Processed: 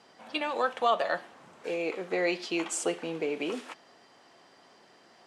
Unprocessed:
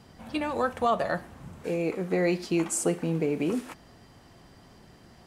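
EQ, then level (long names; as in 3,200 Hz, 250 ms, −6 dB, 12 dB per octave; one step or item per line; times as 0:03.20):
dynamic equaliser 3,200 Hz, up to +7 dB, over −53 dBFS, Q 2
band-pass filter 430–7,100 Hz
0.0 dB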